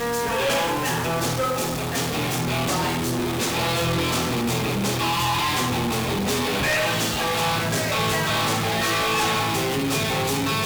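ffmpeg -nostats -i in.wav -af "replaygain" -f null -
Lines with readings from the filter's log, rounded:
track_gain = +5.1 dB
track_peak = 0.088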